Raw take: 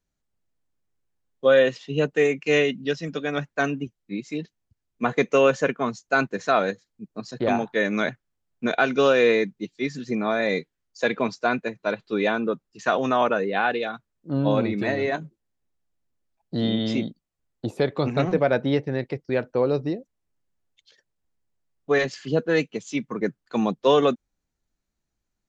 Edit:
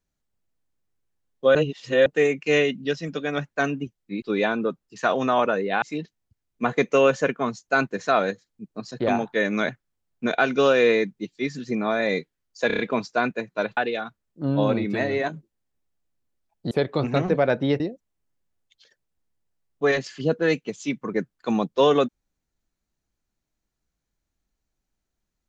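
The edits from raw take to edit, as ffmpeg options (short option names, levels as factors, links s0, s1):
-filter_complex "[0:a]asplit=12[s0][s1][s2][s3][s4][s5][s6][s7][s8][s9][s10][s11];[s0]atrim=end=1.552[s12];[s1]atrim=start=1.548:end=2.062,asetpts=PTS-STARTPTS,areverse[s13];[s2]atrim=start=2.058:end=4.222[s14];[s3]atrim=start=12.048:end=13.652[s15];[s4]atrim=start=4.218:end=11.102[s16];[s5]atrim=start=11.068:end=11.102[s17];[s6]atrim=start=11.068:end=11.102[s18];[s7]atrim=start=11.068:end=11.102[s19];[s8]atrim=start=11.068:end=12.052[s20];[s9]atrim=start=13.648:end=16.592[s21];[s10]atrim=start=17.738:end=18.832[s22];[s11]atrim=start=19.868[s23];[s12][s13]acrossfade=d=0.004:c1=hsin:c2=hsin[s24];[s24][s14]acrossfade=d=0.004:c1=hsin:c2=hsin[s25];[s25][s15]acrossfade=d=0.004:c1=hsin:c2=hsin[s26];[s26][s16]acrossfade=d=0.004:c1=hsin:c2=hsin[s27];[s27][s17]acrossfade=d=0.004:c1=hsin:c2=hsin[s28];[s28][s18]acrossfade=d=0.004:c1=hsin:c2=hsin[s29];[s29][s19]acrossfade=d=0.004:c1=hsin:c2=hsin[s30];[s30][s20]acrossfade=d=0.004:c1=hsin:c2=hsin[s31];[s31][s21]acrossfade=d=0.004:c1=hsin:c2=hsin[s32];[s32][s22]acrossfade=d=0.004:c1=hsin:c2=hsin[s33];[s33][s23]acrossfade=d=0.004:c1=hsin:c2=hsin"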